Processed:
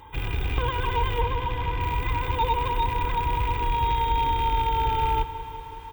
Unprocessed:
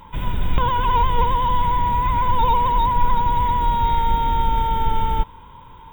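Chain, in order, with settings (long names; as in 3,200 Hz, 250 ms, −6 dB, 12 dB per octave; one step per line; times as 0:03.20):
loose part that buzzes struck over −27 dBFS, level −22 dBFS
high-pass filter 49 Hz
comb filter 2.5 ms, depth 81%
in parallel at −2 dB: brickwall limiter −13 dBFS, peak gain reduction 8.5 dB
0:01.21–0:01.81: on the sum: high-frequency loss of the air 170 metres
feedback echo at a low word length 185 ms, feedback 80%, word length 7 bits, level −15 dB
level −9 dB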